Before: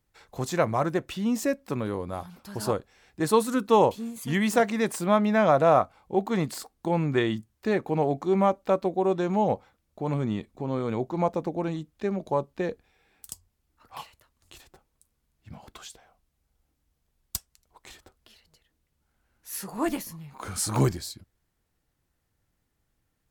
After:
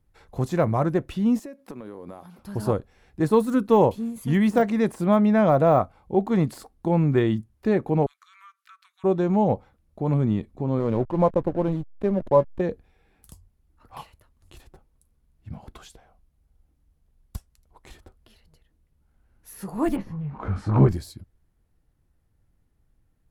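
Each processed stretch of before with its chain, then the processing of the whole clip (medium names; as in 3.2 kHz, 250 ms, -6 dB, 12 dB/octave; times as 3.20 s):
1.39–2.39 s: high-pass 250 Hz + compression 12:1, threshold -37 dBFS + companded quantiser 8-bit
8.06–9.04 s: steep high-pass 1.2 kHz 72 dB/octave + compression 3:1, threshold -50 dBFS
10.79–12.61 s: small resonant body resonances 560/1000/3100 Hz, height 9 dB, ringing for 35 ms + hysteresis with a dead band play -33.5 dBFS
19.96–20.89 s: companding laws mixed up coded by mu + low-pass 2 kHz + doubling 20 ms -7 dB
whole clip: tilt EQ -2.5 dB/octave; de-esser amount 100%; peaking EQ 11 kHz +10 dB 0.31 oct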